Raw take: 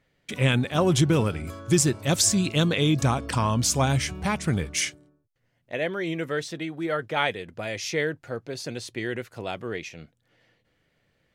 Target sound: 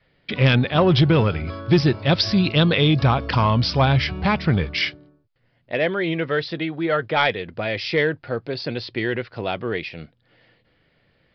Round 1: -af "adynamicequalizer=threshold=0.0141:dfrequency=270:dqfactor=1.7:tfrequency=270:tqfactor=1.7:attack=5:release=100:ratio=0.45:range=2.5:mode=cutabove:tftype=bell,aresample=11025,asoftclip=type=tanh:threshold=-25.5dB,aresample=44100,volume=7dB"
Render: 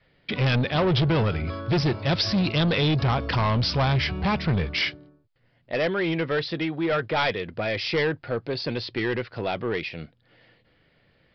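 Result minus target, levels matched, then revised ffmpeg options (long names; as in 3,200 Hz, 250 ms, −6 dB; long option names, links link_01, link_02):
soft clipping: distortion +13 dB
-af "adynamicequalizer=threshold=0.0141:dfrequency=270:dqfactor=1.7:tfrequency=270:tqfactor=1.7:attack=5:release=100:ratio=0.45:range=2.5:mode=cutabove:tftype=bell,aresample=11025,asoftclip=type=tanh:threshold=-13.5dB,aresample=44100,volume=7dB"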